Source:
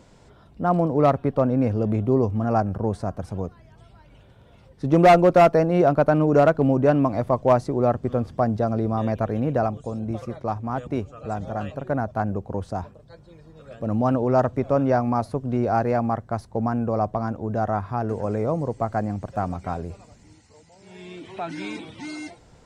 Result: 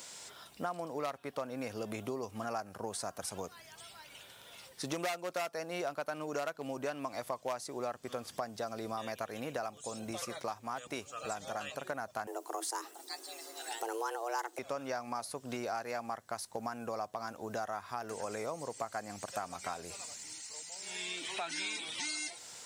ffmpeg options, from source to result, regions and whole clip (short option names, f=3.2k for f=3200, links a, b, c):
-filter_complex "[0:a]asettb=1/sr,asplit=3[a][b][c];[a]atrim=end=12.274[d];[b]atrim=start=12.27:end=14.59,asetpts=PTS-STARTPTS,afade=t=in:d=0.004:c=qsin,afade=t=out:st=2.316:d=0.004:c=qsin,highshelf=f=5.9k:g=12,afreqshift=230[e];[c]atrim=start=14.586[f];[d][e]acrossfade=d=0.004:c1=hsin:c2=qsin[g];[g][f]acrossfade=d=0.004:c1=qsin:c2=hsin,aderivative,acompressor=threshold=-54dB:ratio=5,volume=18dB"